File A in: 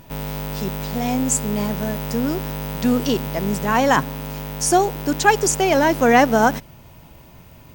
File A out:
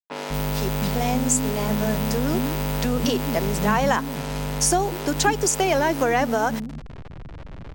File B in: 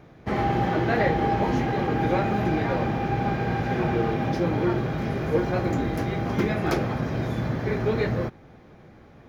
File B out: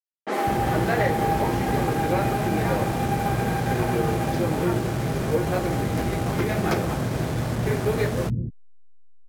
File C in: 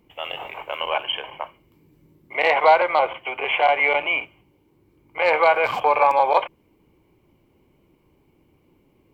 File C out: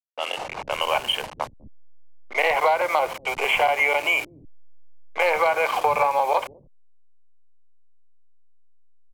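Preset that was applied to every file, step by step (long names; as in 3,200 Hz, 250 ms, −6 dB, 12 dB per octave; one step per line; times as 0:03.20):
hold until the input has moved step −33 dBFS
downward compressor 10 to 1, threshold −19 dBFS
multiband delay without the direct sound highs, lows 200 ms, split 260 Hz
low-pass that shuts in the quiet parts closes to 2,000 Hz, open at −25 dBFS
level +3 dB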